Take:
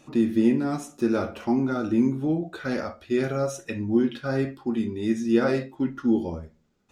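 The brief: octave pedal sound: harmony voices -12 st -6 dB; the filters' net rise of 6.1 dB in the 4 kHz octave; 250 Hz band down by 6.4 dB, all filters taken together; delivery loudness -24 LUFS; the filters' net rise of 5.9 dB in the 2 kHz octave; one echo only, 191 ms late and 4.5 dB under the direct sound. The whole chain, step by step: peaking EQ 250 Hz -8 dB; peaking EQ 2 kHz +7 dB; peaking EQ 4 kHz +5.5 dB; delay 191 ms -4.5 dB; harmony voices -12 st -6 dB; trim +3 dB

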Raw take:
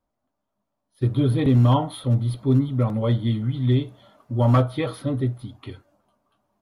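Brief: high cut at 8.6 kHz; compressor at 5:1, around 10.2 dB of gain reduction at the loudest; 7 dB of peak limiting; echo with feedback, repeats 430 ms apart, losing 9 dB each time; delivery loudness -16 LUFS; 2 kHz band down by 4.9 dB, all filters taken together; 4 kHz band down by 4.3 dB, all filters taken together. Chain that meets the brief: low-pass 8.6 kHz; peaking EQ 2 kHz -5 dB; peaking EQ 4 kHz -3.5 dB; compression 5:1, threshold -25 dBFS; peak limiter -24 dBFS; feedback delay 430 ms, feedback 35%, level -9 dB; trim +16.5 dB

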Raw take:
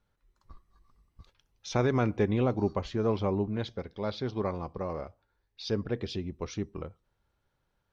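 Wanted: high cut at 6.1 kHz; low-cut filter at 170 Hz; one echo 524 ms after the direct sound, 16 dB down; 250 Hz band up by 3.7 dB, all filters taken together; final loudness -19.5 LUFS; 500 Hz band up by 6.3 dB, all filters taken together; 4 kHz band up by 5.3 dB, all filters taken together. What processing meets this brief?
high-pass 170 Hz; low-pass 6.1 kHz; peaking EQ 250 Hz +4 dB; peaking EQ 500 Hz +6.5 dB; peaking EQ 4 kHz +7 dB; delay 524 ms -16 dB; trim +8 dB

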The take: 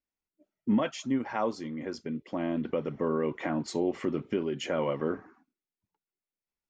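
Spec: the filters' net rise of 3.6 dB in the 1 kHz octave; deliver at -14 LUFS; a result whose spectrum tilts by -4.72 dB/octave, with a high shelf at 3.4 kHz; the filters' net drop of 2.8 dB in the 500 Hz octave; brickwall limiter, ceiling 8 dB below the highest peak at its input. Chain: peaking EQ 500 Hz -5 dB; peaking EQ 1 kHz +5.5 dB; treble shelf 3.4 kHz +6 dB; trim +21.5 dB; peak limiter -2.5 dBFS

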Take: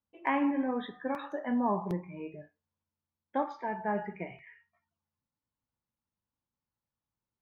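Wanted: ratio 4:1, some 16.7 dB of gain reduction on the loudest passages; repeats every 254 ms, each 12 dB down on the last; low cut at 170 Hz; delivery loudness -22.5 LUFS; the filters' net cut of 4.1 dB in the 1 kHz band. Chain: high-pass 170 Hz; peaking EQ 1 kHz -5 dB; compression 4:1, threshold -48 dBFS; feedback delay 254 ms, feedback 25%, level -12 dB; trim +28 dB

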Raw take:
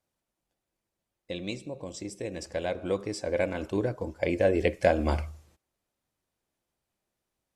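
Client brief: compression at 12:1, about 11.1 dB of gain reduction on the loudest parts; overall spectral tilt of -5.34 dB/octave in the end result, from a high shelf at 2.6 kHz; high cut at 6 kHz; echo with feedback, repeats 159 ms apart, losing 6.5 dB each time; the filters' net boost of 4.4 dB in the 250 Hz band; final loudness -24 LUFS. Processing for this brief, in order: low-pass 6 kHz; peaking EQ 250 Hz +6 dB; treble shelf 2.6 kHz +4 dB; compression 12:1, threshold -27 dBFS; feedback delay 159 ms, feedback 47%, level -6.5 dB; trim +9 dB

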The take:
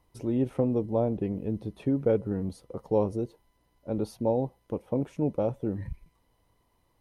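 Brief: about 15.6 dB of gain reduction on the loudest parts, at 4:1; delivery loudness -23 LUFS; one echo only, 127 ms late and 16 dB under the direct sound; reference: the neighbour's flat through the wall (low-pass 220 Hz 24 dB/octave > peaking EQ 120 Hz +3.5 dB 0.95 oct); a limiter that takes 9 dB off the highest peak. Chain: compression 4:1, threshold -39 dBFS; peak limiter -35 dBFS; low-pass 220 Hz 24 dB/octave; peaking EQ 120 Hz +3.5 dB 0.95 oct; delay 127 ms -16 dB; trim +25 dB

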